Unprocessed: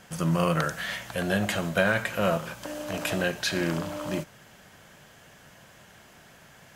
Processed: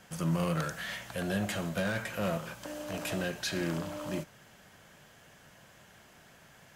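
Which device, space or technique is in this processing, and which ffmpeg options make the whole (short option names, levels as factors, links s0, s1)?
one-band saturation: -filter_complex "[0:a]acrossover=split=370|4800[s0][s1][s2];[s1]asoftclip=type=tanh:threshold=0.0447[s3];[s0][s3][s2]amix=inputs=3:normalize=0,volume=0.596"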